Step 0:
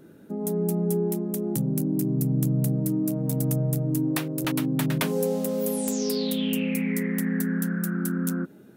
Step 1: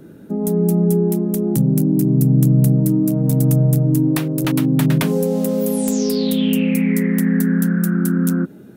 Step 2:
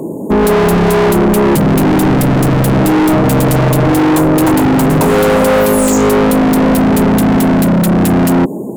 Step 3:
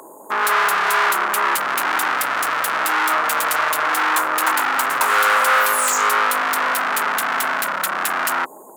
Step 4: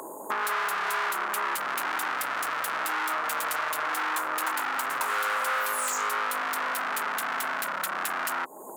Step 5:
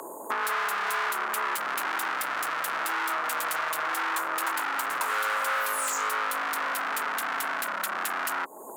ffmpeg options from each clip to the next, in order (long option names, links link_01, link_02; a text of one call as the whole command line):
ffmpeg -i in.wav -filter_complex "[0:a]lowshelf=frequency=320:gain=6.5,acrossover=split=300[link_01][link_02];[link_02]acompressor=threshold=-24dB:ratio=6[link_03];[link_01][link_03]amix=inputs=2:normalize=0,volume=5.5dB" out.wav
ffmpeg -i in.wav -filter_complex "[0:a]afftfilt=real='re*(1-between(b*sr/4096,1100,6600))':imag='im*(1-between(b*sr/4096,1100,6600))':win_size=4096:overlap=0.75,asplit=2[link_01][link_02];[link_02]highpass=frequency=720:poles=1,volume=31dB,asoftclip=type=tanh:threshold=-3.5dB[link_03];[link_01][link_03]amix=inputs=2:normalize=0,lowpass=frequency=3200:poles=1,volume=-6dB,aeval=exprs='0.316*(abs(mod(val(0)/0.316+3,4)-2)-1)':channel_layout=same,volume=3.5dB" out.wav
ffmpeg -i in.wav -af "highpass=frequency=1300:width_type=q:width=2.3,volume=-2dB" out.wav
ffmpeg -i in.wav -af "acompressor=threshold=-31dB:ratio=3,volume=1dB" out.wav
ffmpeg -i in.wav -af "afreqshift=15" out.wav